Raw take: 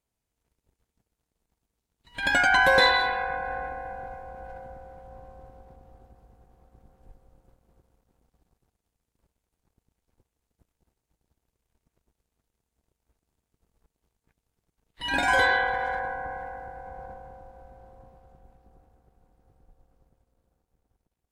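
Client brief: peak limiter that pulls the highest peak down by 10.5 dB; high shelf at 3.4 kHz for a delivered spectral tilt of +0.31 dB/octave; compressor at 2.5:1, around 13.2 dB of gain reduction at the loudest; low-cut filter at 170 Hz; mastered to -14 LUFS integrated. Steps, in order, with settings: high-pass 170 Hz; treble shelf 3.4 kHz +3.5 dB; compression 2.5:1, threshold -36 dBFS; trim +27 dB; peak limiter -4 dBFS

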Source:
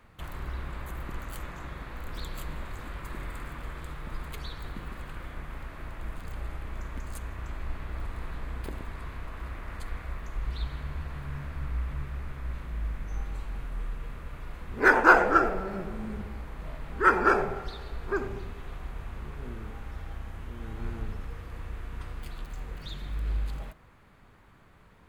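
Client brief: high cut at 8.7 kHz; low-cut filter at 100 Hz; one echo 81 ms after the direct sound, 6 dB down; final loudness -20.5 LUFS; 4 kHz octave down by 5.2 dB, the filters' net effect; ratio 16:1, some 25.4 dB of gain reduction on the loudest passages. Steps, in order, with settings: high-pass 100 Hz; low-pass 8.7 kHz; peaking EQ 4 kHz -6.5 dB; compression 16:1, threshold -38 dBFS; delay 81 ms -6 dB; trim +23.5 dB

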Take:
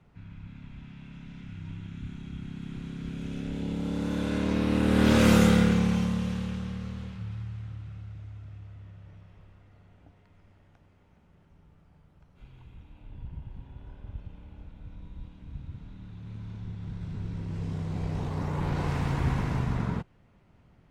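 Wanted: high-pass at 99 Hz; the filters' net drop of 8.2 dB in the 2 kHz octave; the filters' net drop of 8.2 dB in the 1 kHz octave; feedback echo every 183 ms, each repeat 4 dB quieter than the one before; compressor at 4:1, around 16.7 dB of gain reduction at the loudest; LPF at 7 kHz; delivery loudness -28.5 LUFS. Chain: high-pass 99 Hz; low-pass 7 kHz; peaking EQ 1 kHz -8.5 dB; peaking EQ 2 kHz -8 dB; compression 4:1, threshold -38 dBFS; feedback delay 183 ms, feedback 63%, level -4 dB; trim +12 dB

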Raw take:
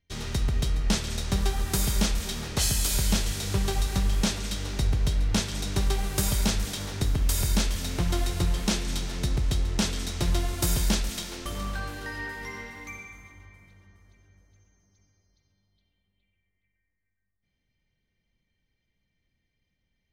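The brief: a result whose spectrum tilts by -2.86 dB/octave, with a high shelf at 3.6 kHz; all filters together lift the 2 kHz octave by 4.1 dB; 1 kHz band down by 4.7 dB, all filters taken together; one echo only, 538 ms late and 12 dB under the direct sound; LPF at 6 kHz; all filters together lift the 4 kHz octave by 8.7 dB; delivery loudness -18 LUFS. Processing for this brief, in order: low-pass 6 kHz; peaking EQ 1 kHz -8.5 dB; peaking EQ 2 kHz +3.5 dB; treble shelf 3.6 kHz +5.5 dB; peaking EQ 4 kHz +7.5 dB; delay 538 ms -12 dB; trim +6.5 dB

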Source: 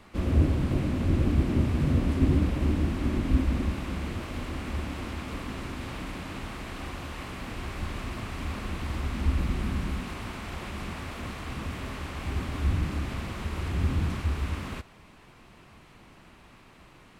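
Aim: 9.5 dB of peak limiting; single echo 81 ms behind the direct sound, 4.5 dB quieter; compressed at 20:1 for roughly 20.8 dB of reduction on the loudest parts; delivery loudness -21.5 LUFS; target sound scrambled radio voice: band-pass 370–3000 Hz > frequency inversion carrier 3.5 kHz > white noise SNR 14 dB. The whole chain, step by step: compression 20:1, threshold -37 dBFS; peak limiter -38 dBFS; band-pass 370–3000 Hz; delay 81 ms -4.5 dB; frequency inversion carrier 3.5 kHz; white noise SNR 14 dB; trim +28 dB

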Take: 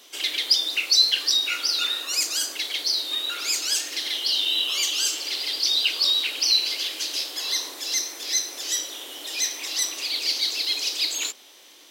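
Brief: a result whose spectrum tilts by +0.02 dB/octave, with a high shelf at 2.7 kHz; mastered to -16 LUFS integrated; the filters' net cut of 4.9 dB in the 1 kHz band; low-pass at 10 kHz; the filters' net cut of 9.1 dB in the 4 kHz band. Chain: low-pass 10 kHz; peaking EQ 1 kHz -5.5 dB; treble shelf 2.7 kHz -5 dB; peaking EQ 4 kHz -6.5 dB; trim +15 dB

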